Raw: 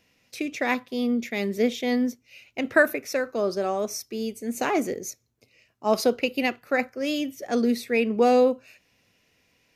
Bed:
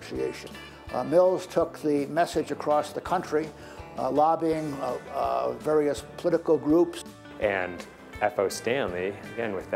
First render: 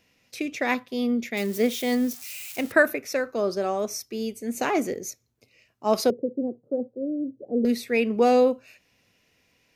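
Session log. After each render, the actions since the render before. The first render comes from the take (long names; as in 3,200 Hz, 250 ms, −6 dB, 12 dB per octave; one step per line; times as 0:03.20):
0:01.37–0:02.72: spike at every zero crossing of −29 dBFS
0:06.10–0:07.65: elliptic band-pass filter 120–520 Hz, stop band 60 dB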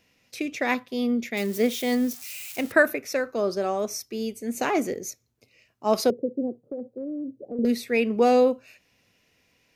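0:06.64–0:07.59: downward compressor, threshold −29 dBFS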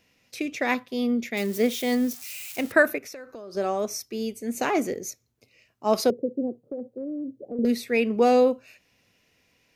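0:02.98–0:03.55: downward compressor 8 to 1, threshold −37 dBFS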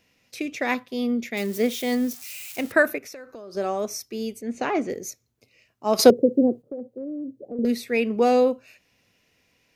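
0:04.41–0:04.90: high-frequency loss of the air 130 metres
0:05.99–0:06.62: clip gain +9 dB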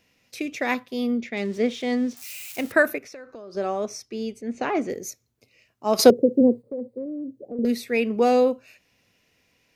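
0:01.18–0:02.17: high-frequency loss of the air 110 metres
0:03.03–0:04.77: high-frequency loss of the air 64 metres
0:06.40–0:07.06: EQ curve with evenly spaced ripples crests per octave 0.95, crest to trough 8 dB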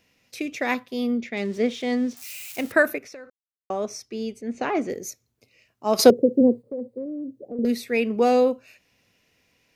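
0:03.30–0:03.70: silence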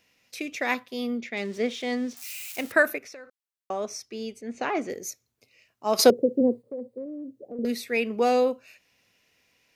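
low-shelf EQ 470 Hz −7 dB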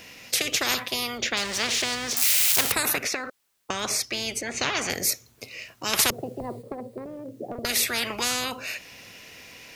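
every bin compressed towards the loudest bin 10 to 1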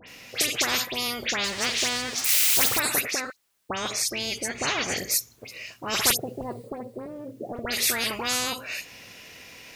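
all-pass dispersion highs, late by 80 ms, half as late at 2,800 Hz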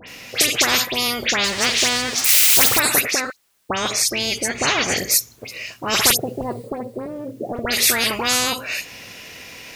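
level +7.5 dB
brickwall limiter −2 dBFS, peak gain reduction 2.5 dB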